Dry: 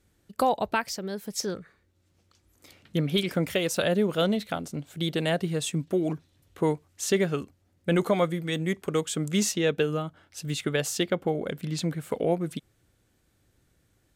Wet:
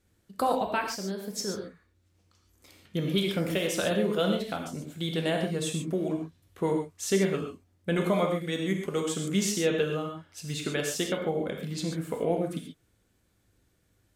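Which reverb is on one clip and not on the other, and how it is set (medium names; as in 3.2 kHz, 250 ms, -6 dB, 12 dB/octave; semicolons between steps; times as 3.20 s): gated-style reverb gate 160 ms flat, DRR 1.5 dB; trim -4 dB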